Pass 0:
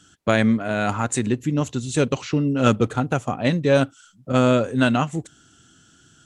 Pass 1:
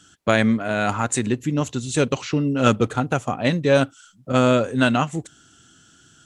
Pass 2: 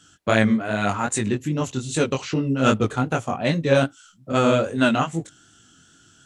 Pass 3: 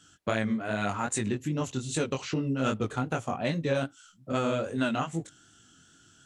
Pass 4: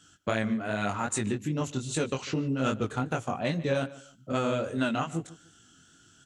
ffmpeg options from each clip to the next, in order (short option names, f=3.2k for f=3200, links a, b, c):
-af "lowshelf=f=490:g=-3,volume=2dB"
-af "flanger=delay=18:depth=5.2:speed=2.5,volume=2dB"
-af "acompressor=threshold=-21dB:ratio=3,volume=-4.5dB"
-filter_complex "[0:a]asplit=2[a][b];[b]adelay=148,lowpass=f=4.9k:p=1,volume=-18dB,asplit=2[c][d];[d]adelay=148,lowpass=f=4.9k:p=1,volume=0.27[e];[a][c][e]amix=inputs=3:normalize=0"